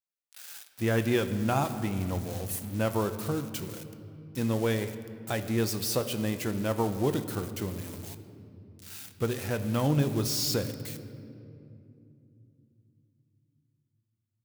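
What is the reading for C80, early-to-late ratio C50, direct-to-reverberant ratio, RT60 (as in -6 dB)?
12.0 dB, 11.5 dB, 8.5 dB, 2.8 s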